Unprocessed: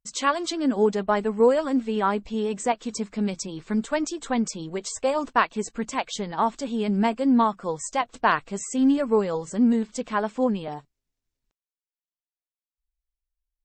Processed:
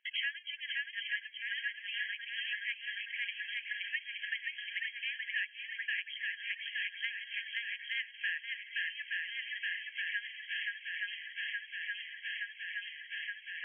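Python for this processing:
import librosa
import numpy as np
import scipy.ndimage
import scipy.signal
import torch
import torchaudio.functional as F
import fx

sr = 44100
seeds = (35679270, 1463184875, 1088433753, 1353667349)

y = np.clip(x, -10.0 ** (-11.0 / 20.0), 10.0 ** (-11.0 / 20.0))
y = fx.brickwall_bandpass(y, sr, low_hz=1600.0, high_hz=3300.0)
y = fx.echo_swing(y, sr, ms=871, ratio=1.5, feedback_pct=55, wet_db=-4.5)
y = fx.band_squash(y, sr, depth_pct=100)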